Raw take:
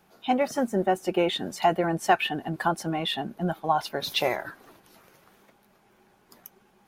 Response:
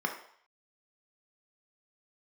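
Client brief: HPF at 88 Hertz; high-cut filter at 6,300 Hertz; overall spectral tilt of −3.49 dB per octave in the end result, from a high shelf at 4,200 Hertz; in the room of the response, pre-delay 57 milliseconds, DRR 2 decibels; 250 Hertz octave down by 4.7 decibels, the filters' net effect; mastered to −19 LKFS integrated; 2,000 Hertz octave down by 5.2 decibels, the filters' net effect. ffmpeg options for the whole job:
-filter_complex "[0:a]highpass=88,lowpass=6300,equalizer=frequency=250:width_type=o:gain=-7,equalizer=frequency=2000:width_type=o:gain=-5,highshelf=frequency=4200:gain=-7.5,asplit=2[link_01][link_02];[1:a]atrim=start_sample=2205,adelay=57[link_03];[link_02][link_03]afir=irnorm=-1:irlink=0,volume=-9.5dB[link_04];[link_01][link_04]amix=inputs=2:normalize=0,volume=8.5dB"

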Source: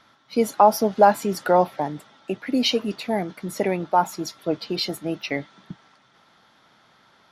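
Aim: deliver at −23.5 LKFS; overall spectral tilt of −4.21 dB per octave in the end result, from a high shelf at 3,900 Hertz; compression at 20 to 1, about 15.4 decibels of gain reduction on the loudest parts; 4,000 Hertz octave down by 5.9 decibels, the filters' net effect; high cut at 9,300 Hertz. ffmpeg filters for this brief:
ffmpeg -i in.wav -af "lowpass=9300,highshelf=frequency=3900:gain=-4,equalizer=frequency=4000:width_type=o:gain=-5,acompressor=threshold=-24dB:ratio=20,volume=8dB" out.wav

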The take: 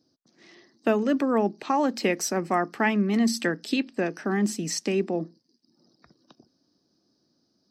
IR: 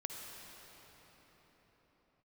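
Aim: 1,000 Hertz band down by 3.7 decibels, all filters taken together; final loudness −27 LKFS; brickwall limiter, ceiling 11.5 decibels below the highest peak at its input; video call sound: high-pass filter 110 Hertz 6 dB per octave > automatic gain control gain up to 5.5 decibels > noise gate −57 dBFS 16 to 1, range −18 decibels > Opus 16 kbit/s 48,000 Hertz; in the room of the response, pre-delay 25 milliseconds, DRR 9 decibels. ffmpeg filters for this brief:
-filter_complex "[0:a]equalizer=frequency=1000:width_type=o:gain=-5,alimiter=limit=-23dB:level=0:latency=1,asplit=2[link_01][link_02];[1:a]atrim=start_sample=2205,adelay=25[link_03];[link_02][link_03]afir=irnorm=-1:irlink=0,volume=-8.5dB[link_04];[link_01][link_04]amix=inputs=2:normalize=0,highpass=frequency=110:poles=1,dynaudnorm=maxgain=5.5dB,agate=range=-18dB:threshold=-57dB:ratio=16,volume=5.5dB" -ar 48000 -c:a libopus -b:a 16k

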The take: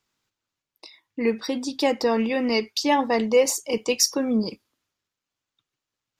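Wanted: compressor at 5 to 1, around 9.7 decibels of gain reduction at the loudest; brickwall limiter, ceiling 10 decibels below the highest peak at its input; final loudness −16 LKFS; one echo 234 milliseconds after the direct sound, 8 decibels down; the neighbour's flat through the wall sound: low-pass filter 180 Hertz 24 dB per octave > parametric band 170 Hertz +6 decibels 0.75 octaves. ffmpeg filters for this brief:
ffmpeg -i in.wav -af "acompressor=threshold=-24dB:ratio=5,alimiter=limit=-23.5dB:level=0:latency=1,lowpass=frequency=180:width=0.5412,lowpass=frequency=180:width=1.3066,equalizer=frequency=170:width_type=o:width=0.75:gain=6,aecho=1:1:234:0.398,volume=27dB" out.wav

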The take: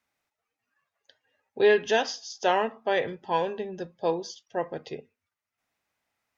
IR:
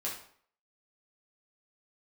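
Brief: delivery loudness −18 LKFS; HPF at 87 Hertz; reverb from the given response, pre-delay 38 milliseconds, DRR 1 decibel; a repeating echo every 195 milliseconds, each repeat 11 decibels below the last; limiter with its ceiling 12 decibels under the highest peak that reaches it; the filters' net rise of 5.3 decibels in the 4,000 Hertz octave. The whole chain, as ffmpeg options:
-filter_complex "[0:a]highpass=87,equalizer=frequency=4000:width_type=o:gain=7,alimiter=limit=-21dB:level=0:latency=1,aecho=1:1:195|390|585:0.282|0.0789|0.0221,asplit=2[link_01][link_02];[1:a]atrim=start_sample=2205,adelay=38[link_03];[link_02][link_03]afir=irnorm=-1:irlink=0,volume=-3.5dB[link_04];[link_01][link_04]amix=inputs=2:normalize=0,volume=12dB"

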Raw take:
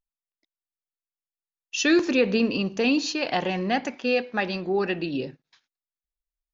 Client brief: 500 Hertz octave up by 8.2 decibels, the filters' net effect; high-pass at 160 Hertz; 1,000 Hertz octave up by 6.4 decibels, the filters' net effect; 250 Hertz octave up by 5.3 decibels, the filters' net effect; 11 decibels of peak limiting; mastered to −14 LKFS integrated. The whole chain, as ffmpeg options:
ffmpeg -i in.wav -af "highpass=160,equalizer=frequency=250:width_type=o:gain=4.5,equalizer=frequency=500:width_type=o:gain=7.5,equalizer=frequency=1000:width_type=o:gain=5,volume=9.5dB,alimiter=limit=-4dB:level=0:latency=1" out.wav

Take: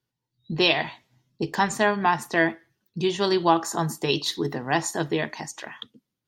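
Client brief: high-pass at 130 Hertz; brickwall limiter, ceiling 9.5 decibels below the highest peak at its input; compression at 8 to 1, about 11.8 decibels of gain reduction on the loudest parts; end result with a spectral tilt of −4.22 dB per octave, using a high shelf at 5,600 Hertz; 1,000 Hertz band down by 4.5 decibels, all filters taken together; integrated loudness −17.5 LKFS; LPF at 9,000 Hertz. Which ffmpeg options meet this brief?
ffmpeg -i in.wav -af "highpass=130,lowpass=9000,equalizer=frequency=1000:width_type=o:gain=-5.5,highshelf=frequency=5600:gain=-6,acompressor=threshold=-30dB:ratio=8,volume=21.5dB,alimiter=limit=-5.5dB:level=0:latency=1" out.wav

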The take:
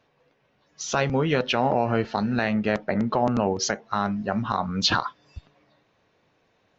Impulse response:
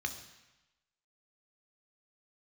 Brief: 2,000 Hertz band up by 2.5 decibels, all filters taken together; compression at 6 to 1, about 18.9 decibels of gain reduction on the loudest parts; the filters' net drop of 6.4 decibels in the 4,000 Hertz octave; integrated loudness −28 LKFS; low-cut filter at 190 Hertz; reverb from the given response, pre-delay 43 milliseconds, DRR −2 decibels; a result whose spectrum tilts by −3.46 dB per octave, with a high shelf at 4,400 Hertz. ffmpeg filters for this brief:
-filter_complex "[0:a]highpass=190,equalizer=frequency=2000:width_type=o:gain=6,equalizer=frequency=4000:width_type=o:gain=-5.5,highshelf=frequency=4400:gain=-8.5,acompressor=threshold=-39dB:ratio=6,asplit=2[link_01][link_02];[1:a]atrim=start_sample=2205,adelay=43[link_03];[link_02][link_03]afir=irnorm=-1:irlink=0,volume=-0.5dB[link_04];[link_01][link_04]amix=inputs=2:normalize=0,volume=10.5dB"

